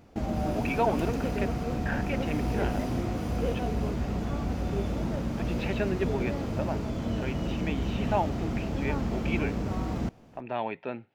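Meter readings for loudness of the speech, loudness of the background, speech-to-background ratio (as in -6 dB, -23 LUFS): -34.5 LUFS, -31.5 LUFS, -3.0 dB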